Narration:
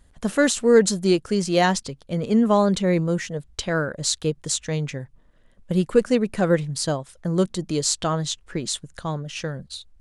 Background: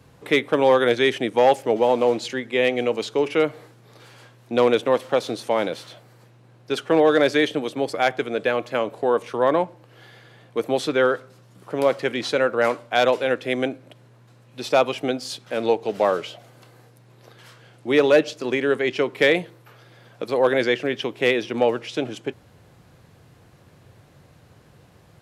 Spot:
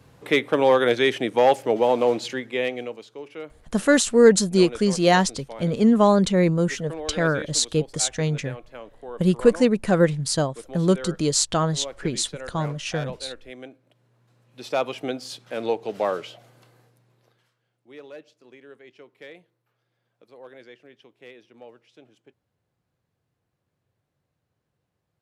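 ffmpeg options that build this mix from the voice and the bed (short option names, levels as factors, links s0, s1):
-filter_complex "[0:a]adelay=3500,volume=1.19[s0];[1:a]volume=3.76,afade=t=out:st=2.27:d=0.76:silence=0.158489,afade=t=in:st=13.84:d=1.25:silence=0.237137,afade=t=out:st=16.45:d=1.06:silence=0.0841395[s1];[s0][s1]amix=inputs=2:normalize=0"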